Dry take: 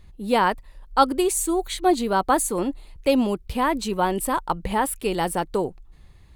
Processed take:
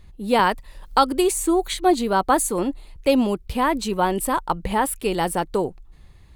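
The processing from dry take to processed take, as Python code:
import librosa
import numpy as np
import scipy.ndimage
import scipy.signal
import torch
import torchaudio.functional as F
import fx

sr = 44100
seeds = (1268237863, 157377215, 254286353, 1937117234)

y = fx.band_squash(x, sr, depth_pct=70, at=(0.39, 1.74))
y = y * librosa.db_to_amplitude(1.5)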